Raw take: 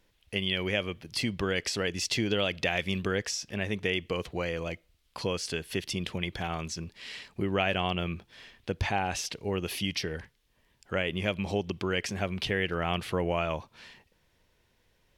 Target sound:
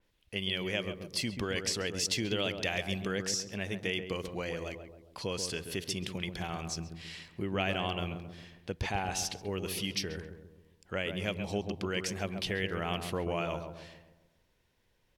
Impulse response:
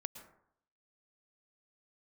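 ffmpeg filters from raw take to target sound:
-filter_complex "[0:a]asplit=2[link_01][link_02];[link_02]adelay=135,lowpass=frequency=990:poles=1,volume=-6dB,asplit=2[link_03][link_04];[link_04]adelay=135,lowpass=frequency=990:poles=1,volume=0.53,asplit=2[link_05][link_06];[link_06]adelay=135,lowpass=frequency=990:poles=1,volume=0.53,asplit=2[link_07][link_08];[link_08]adelay=135,lowpass=frequency=990:poles=1,volume=0.53,asplit=2[link_09][link_10];[link_10]adelay=135,lowpass=frequency=990:poles=1,volume=0.53,asplit=2[link_11][link_12];[link_12]adelay=135,lowpass=frequency=990:poles=1,volume=0.53,asplit=2[link_13][link_14];[link_14]adelay=135,lowpass=frequency=990:poles=1,volume=0.53[link_15];[link_01][link_03][link_05][link_07][link_09][link_11][link_13][link_15]amix=inputs=8:normalize=0,adynamicequalizer=threshold=0.00631:dfrequency=4100:dqfactor=0.7:tfrequency=4100:tqfactor=0.7:attack=5:release=100:ratio=0.375:range=3.5:mode=boostabove:tftype=highshelf,volume=-5dB"

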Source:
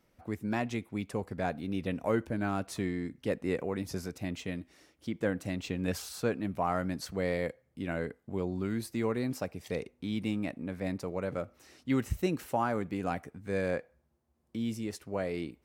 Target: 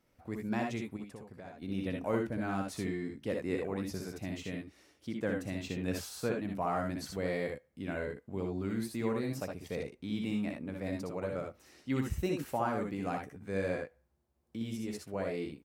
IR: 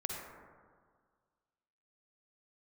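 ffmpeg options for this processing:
-filter_complex "[0:a]asettb=1/sr,asplit=3[link_01][link_02][link_03];[link_01]atrim=end=0.964[link_04];[link_02]atrim=start=0.96:end=1.62,asetpts=PTS-STARTPTS,afade=type=in:duration=0.004:curve=qsin,afade=type=out:start_time=0.656:duration=0.004:curve=qsin,acompressor=threshold=-41dB:ratio=12[link_05];[link_03]atrim=start=1.616[link_06];[link_04][link_05]acrossfade=duration=0.004:curve1=hsin:curve2=qsin[link_07];[link_07][link_06]acrossfade=duration=0.004:curve1=qsin:curve2=hsin,aecho=1:1:62|76:0.596|0.473,volume=-4dB"

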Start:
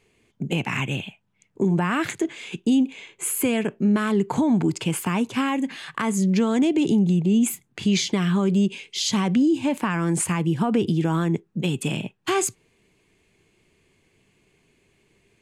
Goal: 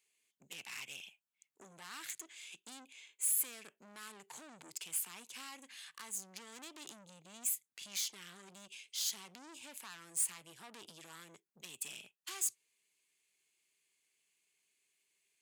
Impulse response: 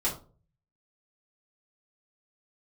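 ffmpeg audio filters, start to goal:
-af "aeval=exprs='(tanh(15.8*val(0)+0.5)-tanh(0.5))/15.8':channel_layout=same,aderivative,volume=-4dB"

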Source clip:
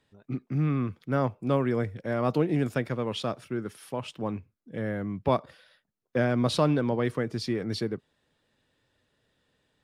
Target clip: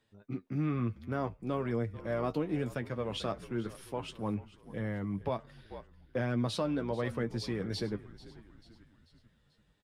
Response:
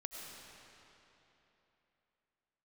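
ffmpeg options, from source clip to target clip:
-filter_complex "[0:a]flanger=delay=8.6:depth=2.4:regen=38:speed=1.1:shape=triangular,asplit=2[link_01][link_02];[link_02]asplit=4[link_03][link_04][link_05][link_06];[link_03]adelay=440,afreqshift=-63,volume=-18dB[link_07];[link_04]adelay=880,afreqshift=-126,volume=-23.5dB[link_08];[link_05]adelay=1320,afreqshift=-189,volume=-29dB[link_09];[link_06]adelay=1760,afreqshift=-252,volume=-34.5dB[link_10];[link_07][link_08][link_09][link_10]amix=inputs=4:normalize=0[link_11];[link_01][link_11]amix=inputs=2:normalize=0,alimiter=limit=-22.5dB:level=0:latency=1:release=390"

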